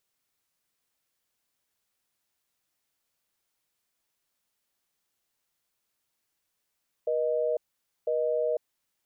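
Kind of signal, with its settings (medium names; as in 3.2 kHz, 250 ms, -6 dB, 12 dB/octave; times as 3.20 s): call progress tone busy tone, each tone -27 dBFS 1.77 s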